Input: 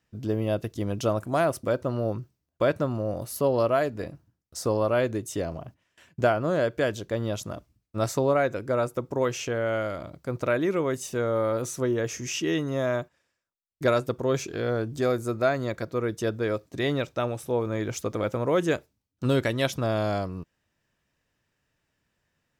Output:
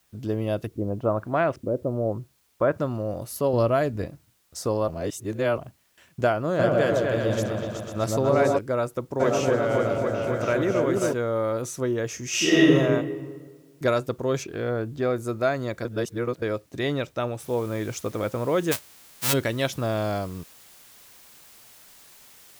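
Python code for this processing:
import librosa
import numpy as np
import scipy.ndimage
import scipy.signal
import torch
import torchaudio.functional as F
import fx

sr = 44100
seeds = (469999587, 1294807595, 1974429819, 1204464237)

y = fx.filter_lfo_lowpass(x, sr, shape='saw_up', hz=fx.line((0.66, 1.5), (2.77, 0.36)), low_hz=330.0, high_hz=2900.0, q=1.3, at=(0.66, 2.77), fade=0.02)
y = fx.low_shelf(y, sr, hz=200.0, db=10.5, at=(3.53, 4.06))
y = fx.echo_opening(y, sr, ms=124, hz=750, octaves=2, feedback_pct=70, wet_db=0, at=(6.58, 8.57), fade=0.02)
y = fx.echo_opening(y, sr, ms=270, hz=750, octaves=1, feedback_pct=70, wet_db=0, at=(9.19, 11.12), fade=0.02)
y = fx.reverb_throw(y, sr, start_s=12.28, length_s=0.46, rt60_s=1.5, drr_db=-9.5)
y = fx.lowpass(y, sr, hz=3200.0, slope=12, at=(14.43, 15.15), fade=0.02)
y = fx.noise_floor_step(y, sr, seeds[0], at_s=17.4, before_db=-67, after_db=-51, tilt_db=0.0)
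y = fx.envelope_flatten(y, sr, power=0.1, at=(18.71, 19.32), fade=0.02)
y = fx.edit(y, sr, fx.reverse_span(start_s=4.88, length_s=0.7),
    fx.reverse_span(start_s=15.85, length_s=0.57), tone=tone)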